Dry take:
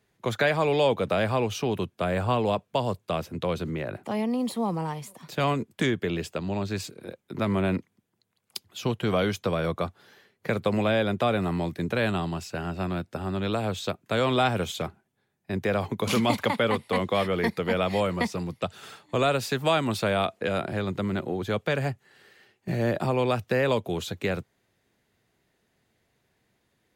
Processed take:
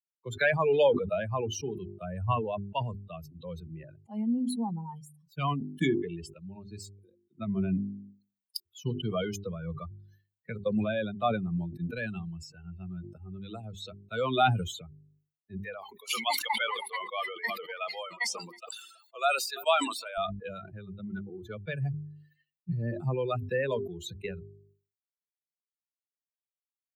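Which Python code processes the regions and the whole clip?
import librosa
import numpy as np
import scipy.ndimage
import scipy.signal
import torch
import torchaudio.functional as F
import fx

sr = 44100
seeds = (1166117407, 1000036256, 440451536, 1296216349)

y = fx.chain(x, sr, fx.highpass(hz=520.0, slope=12),
    fx.echo_single(ms=322, db=-17.0),
    fx.sustainer(db_per_s=73.0), at=(15.65, 20.18))
y = fx.bin_expand(y, sr, power=3.0)
y = fx.hum_notches(y, sr, base_hz=50, count=8)
y = fx.sustainer(y, sr, db_per_s=70.0)
y = y * 10.0 ** (4.0 / 20.0)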